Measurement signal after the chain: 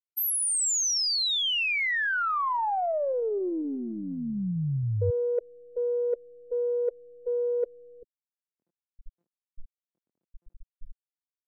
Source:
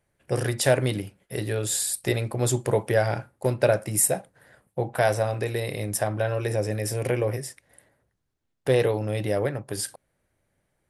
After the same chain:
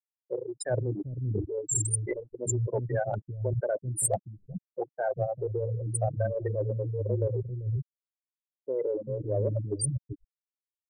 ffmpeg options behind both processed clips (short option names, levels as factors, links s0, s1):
-filter_complex "[0:a]afftfilt=real='re*gte(hypot(re,im),0.178)':imag='im*gte(hypot(re,im),0.178)':win_size=1024:overlap=0.75,equalizer=f=8300:t=o:w=1:g=12.5,areverse,acompressor=threshold=0.02:ratio=20,areverse,aeval=exprs='0.0562*(cos(1*acos(clip(val(0)/0.0562,-1,1)))-cos(1*PI/2))+0.000631*(cos(4*acos(clip(val(0)/0.0562,-1,1)))-cos(4*PI/2))+0.000355*(cos(5*acos(clip(val(0)/0.0562,-1,1)))-cos(5*PI/2))':c=same,acrossover=split=250[s0][s1];[s0]adelay=390[s2];[s2][s1]amix=inputs=2:normalize=0,volume=2.82"